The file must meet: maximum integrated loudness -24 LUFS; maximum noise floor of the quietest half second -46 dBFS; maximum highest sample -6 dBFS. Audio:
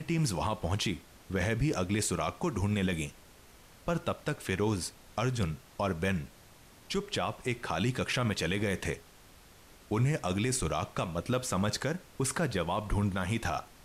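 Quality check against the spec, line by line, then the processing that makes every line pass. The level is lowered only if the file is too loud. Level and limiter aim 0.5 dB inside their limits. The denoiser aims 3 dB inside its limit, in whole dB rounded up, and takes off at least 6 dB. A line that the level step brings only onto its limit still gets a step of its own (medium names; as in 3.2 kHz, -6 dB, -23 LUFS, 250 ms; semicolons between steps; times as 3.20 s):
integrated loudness -32.5 LUFS: pass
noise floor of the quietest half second -56 dBFS: pass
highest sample -18.5 dBFS: pass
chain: none needed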